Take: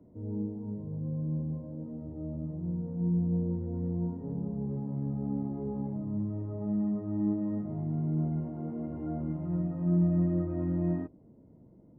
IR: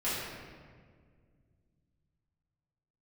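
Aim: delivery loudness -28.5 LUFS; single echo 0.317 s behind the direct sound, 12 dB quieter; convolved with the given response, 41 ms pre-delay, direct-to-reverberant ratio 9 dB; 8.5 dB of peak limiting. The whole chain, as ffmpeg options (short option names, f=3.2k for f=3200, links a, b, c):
-filter_complex "[0:a]alimiter=level_in=2.5dB:limit=-24dB:level=0:latency=1,volume=-2.5dB,aecho=1:1:317:0.251,asplit=2[a][b];[1:a]atrim=start_sample=2205,adelay=41[c];[b][c]afir=irnorm=-1:irlink=0,volume=-17dB[d];[a][d]amix=inputs=2:normalize=0,volume=3dB"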